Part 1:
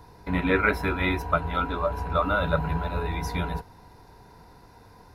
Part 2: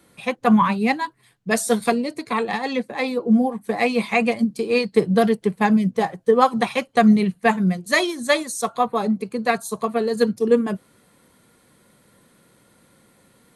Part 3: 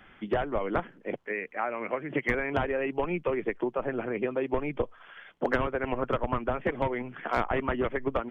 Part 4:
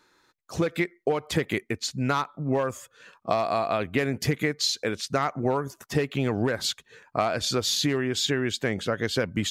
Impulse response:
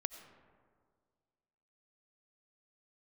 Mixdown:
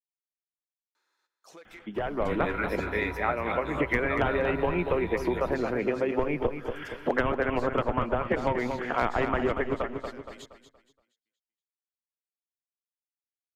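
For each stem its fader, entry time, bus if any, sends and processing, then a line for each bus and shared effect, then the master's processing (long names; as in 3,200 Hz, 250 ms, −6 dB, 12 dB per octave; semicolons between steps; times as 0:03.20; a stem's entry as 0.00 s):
−2.5 dB, 1.95 s, no send, echo send −9.5 dB, no processing
muted
−4.0 dB, 1.65 s, send −9.5 dB, echo send −6.5 dB, automatic gain control gain up to 11.5 dB
−15.0 dB, 0.95 s, send −12 dB, echo send −9.5 dB, high-pass filter 560 Hz 12 dB per octave; downward compressor 2.5 to 1, threshold −35 dBFS, peak gain reduction 10 dB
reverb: on, RT60 1.9 s, pre-delay 50 ms
echo: repeating echo 235 ms, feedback 33%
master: downward compressor 1.5 to 1, threshold −37 dBFS, peak gain reduction 9 dB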